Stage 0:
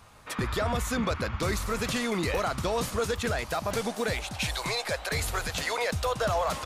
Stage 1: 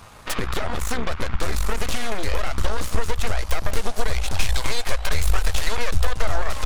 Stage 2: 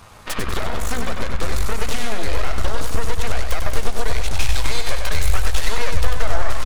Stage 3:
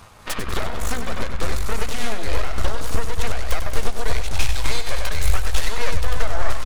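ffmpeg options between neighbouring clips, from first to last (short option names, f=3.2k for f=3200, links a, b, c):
-af "acompressor=threshold=-35dB:ratio=16,aeval=exprs='0.0596*(cos(1*acos(clip(val(0)/0.0596,-1,1)))-cos(1*PI/2))+0.0299*(cos(4*acos(clip(val(0)/0.0596,-1,1)))-cos(4*PI/2))':c=same,asubboost=boost=9.5:cutoff=58,volume=8.5dB"
-af "aecho=1:1:96|192|288|384|480|576:0.531|0.25|0.117|0.0551|0.0259|0.0122"
-af "tremolo=f=3.4:d=0.37"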